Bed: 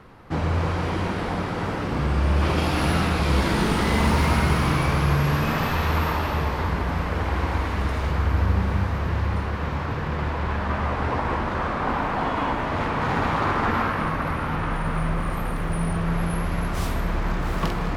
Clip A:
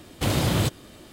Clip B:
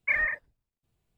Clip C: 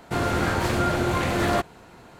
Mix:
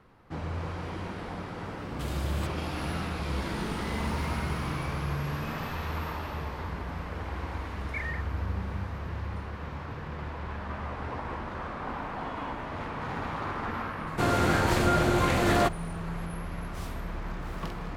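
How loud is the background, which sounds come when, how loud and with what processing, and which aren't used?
bed −11 dB
0:01.78: mix in A −15 dB
0:07.86: mix in B −10.5 dB
0:14.07: mix in C −1 dB

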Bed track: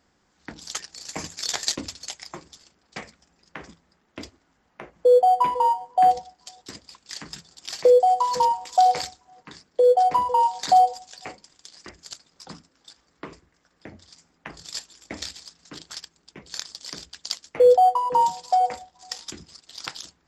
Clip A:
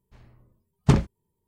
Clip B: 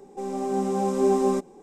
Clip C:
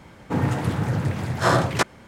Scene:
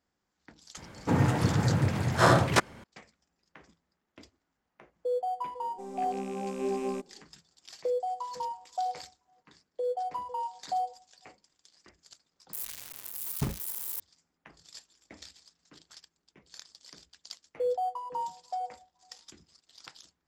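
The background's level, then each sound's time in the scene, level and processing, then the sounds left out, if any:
bed track −15 dB
0:00.77: mix in C −2 dB
0:05.61: mix in B −10.5 dB + loose part that buzzes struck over −32 dBFS, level −28 dBFS
0:12.53: overwrite with A −14 dB + spike at every zero crossing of −12.5 dBFS

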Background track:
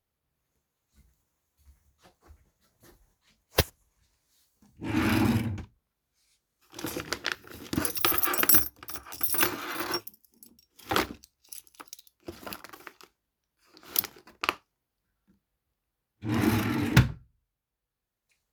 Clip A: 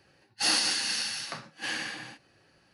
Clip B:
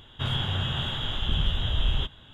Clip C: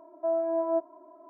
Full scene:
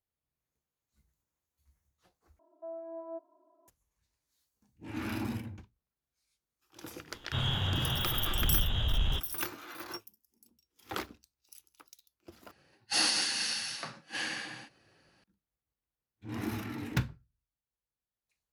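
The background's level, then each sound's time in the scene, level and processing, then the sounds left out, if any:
background track −11 dB
0:02.39: overwrite with C −15 dB
0:07.13: mix in B −6.5 dB + leveller curve on the samples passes 1
0:12.51: overwrite with A −2.5 dB

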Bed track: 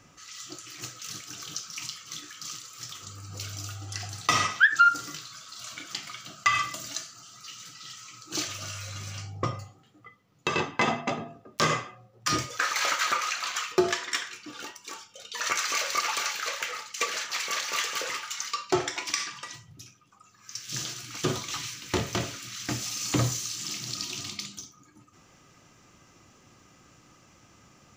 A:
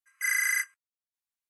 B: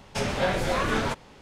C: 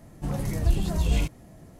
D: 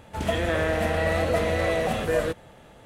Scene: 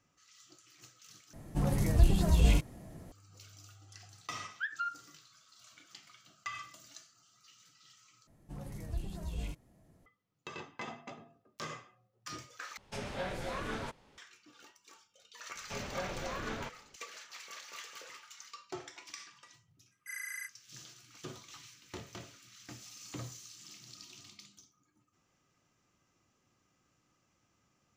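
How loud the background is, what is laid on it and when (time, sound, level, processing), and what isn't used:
bed track −18 dB
0:01.33: overwrite with C −1 dB
0:08.27: overwrite with C −15.5 dB
0:12.77: overwrite with B −13 dB
0:15.55: mix in B −14 dB + low-pass filter 5,100 Hz
0:19.85: mix in A −15 dB + parametric band 1,400 Hz −3 dB 0.36 octaves
not used: D

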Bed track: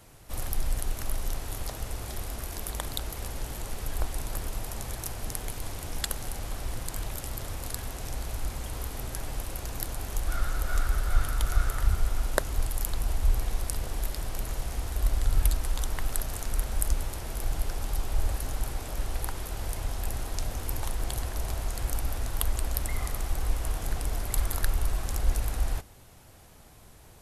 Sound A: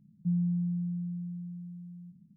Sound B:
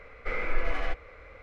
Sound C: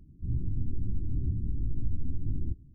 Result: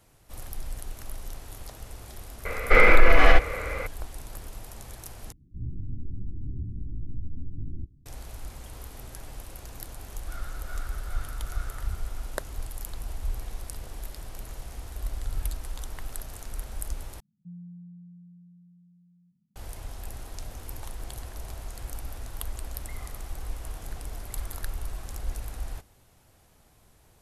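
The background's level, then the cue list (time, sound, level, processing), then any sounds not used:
bed track −7 dB
0:02.45: mix in B −3.5 dB + boost into a limiter +20.5 dB
0:05.32: overwrite with C −4 dB
0:17.20: overwrite with A −15 dB

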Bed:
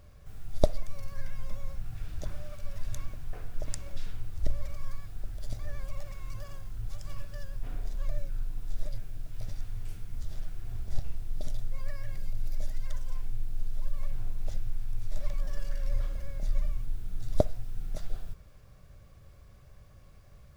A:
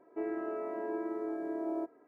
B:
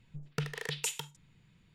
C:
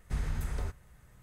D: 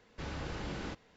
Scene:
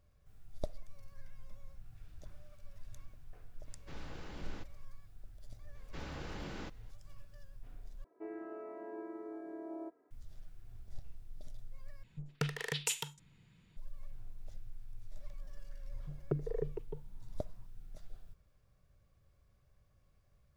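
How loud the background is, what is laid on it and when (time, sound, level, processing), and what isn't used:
bed −15.5 dB
0:03.69: mix in D −9 dB
0:05.75: mix in D −4.5 dB
0:08.04: overwrite with A −9 dB
0:12.03: overwrite with B −0.5 dB
0:15.93: mix in B −3 dB + envelope-controlled low-pass 310–1,100 Hz down, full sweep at −31 dBFS
not used: C

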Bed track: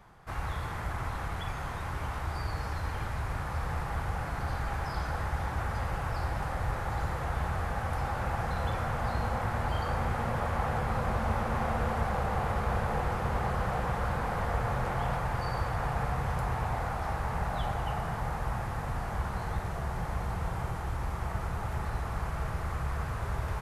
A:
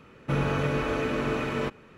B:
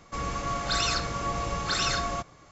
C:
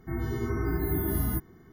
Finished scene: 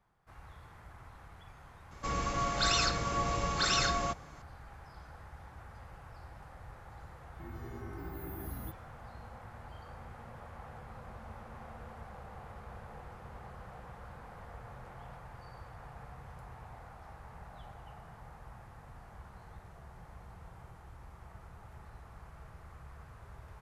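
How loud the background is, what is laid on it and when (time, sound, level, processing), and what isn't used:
bed track −18 dB
0:01.91: mix in B −2 dB
0:07.32: mix in C −15 dB
not used: A

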